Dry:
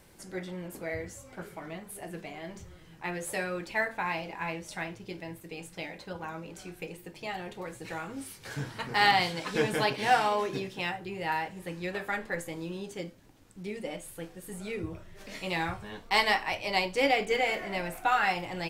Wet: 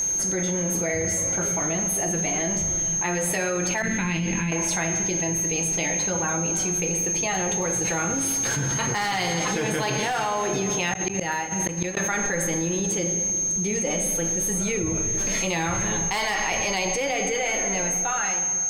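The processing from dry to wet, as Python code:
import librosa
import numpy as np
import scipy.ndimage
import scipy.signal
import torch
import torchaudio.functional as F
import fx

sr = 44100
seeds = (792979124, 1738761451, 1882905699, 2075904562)

y = fx.fade_out_tail(x, sr, length_s=2.56)
y = fx.room_shoebox(y, sr, seeds[0], volume_m3=2300.0, walls='mixed', distance_m=0.82)
y = y + 10.0 ** (-37.0 / 20.0) * np.sin(2.0 * np.pi * 6400.0 * np.arange(len(y)) / sr)
y = fx.curve_eq(y, sr, hz=(230.0, 740.0, 3000.0, 8400.0), db=(0, -24, -6, -17), at=(3.82, 4.52))
y = fx.gate_flip(y, sr, shuts_db=-25.0, range_db=-34, at=(10.93, 11.97))
y = np.clip(10.0 ** (19.5 / 20.0) * y, -1.0, 1.0) / 10.0 ** (19.5 / 20.0)
y = fx.env_flatten(y, sr, amount_pct=100)
y = F.gain(torch.from_numpy(y), -3.0).numpy()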